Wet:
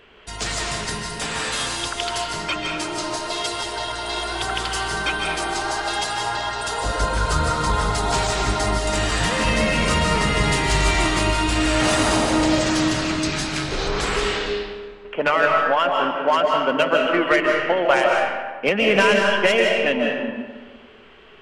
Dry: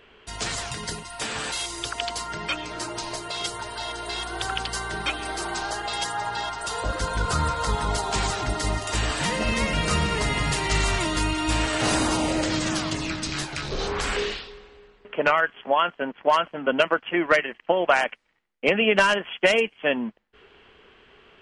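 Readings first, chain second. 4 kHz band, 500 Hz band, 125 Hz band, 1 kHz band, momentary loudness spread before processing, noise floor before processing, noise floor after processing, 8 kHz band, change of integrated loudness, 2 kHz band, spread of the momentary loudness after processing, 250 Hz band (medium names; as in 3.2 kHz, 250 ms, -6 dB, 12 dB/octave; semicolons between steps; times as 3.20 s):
+4.5 dB, +5.0 dB, +4.0 dB, +4.5 dB, 9 LU, -57 dBFS, -41 dBFS, +3.5 dB, +4.5 dB, +4.0 dB, 8 LU, +5.0 dB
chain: in parallel at -4 dB: saturation -21 dBFS, distortion -10 dB; on the sum: algorithmic reverb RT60 1.4 s, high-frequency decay 0.65×, pre-delay 110 ms, DRR 0 dB; trim -1.5 dB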